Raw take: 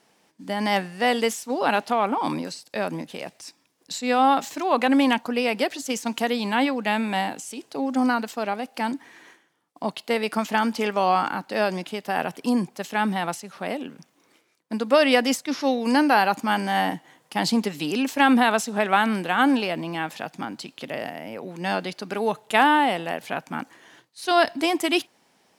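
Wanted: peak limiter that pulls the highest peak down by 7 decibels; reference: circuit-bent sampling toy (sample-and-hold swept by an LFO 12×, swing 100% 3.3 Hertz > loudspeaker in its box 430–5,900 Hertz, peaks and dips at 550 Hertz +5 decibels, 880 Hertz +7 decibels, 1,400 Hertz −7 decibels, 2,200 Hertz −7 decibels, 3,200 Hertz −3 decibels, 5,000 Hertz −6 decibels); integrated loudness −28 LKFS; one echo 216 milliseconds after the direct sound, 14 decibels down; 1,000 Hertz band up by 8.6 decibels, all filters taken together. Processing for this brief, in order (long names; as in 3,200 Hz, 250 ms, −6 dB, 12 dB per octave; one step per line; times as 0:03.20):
parametric band 1,000 Hz +6 dB
brickwall limiter −8 dBFS
single-tap delay 216 ms −14 dB
sample-and-hold swept by an LFO 12×, swing 100% 3.3 Hz
loudspeaker in its box 430–5,900 Hz, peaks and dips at 550 Hz +5 dB, 880 Hz +7 dB, 1,400 Hz −7 dB, 2,200 Hz −7 dB, 3,200 Hz −3 dB, 5,000 Hz −6 dB
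level −6.5 dB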